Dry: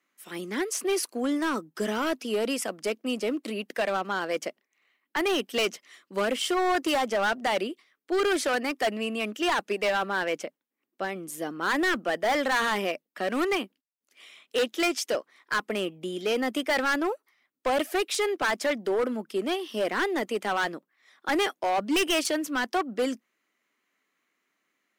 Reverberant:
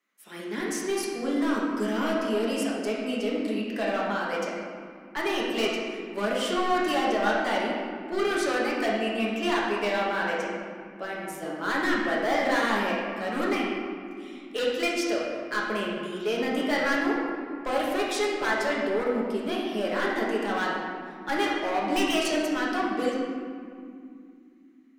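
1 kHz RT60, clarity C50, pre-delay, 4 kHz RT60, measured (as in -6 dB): 2.3 s, -0.5 dB, 5 ms, 1.3 s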